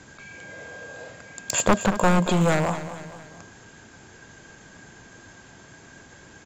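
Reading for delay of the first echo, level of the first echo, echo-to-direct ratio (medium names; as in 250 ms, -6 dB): 228 ms, -12.5 dB, -11.5 dB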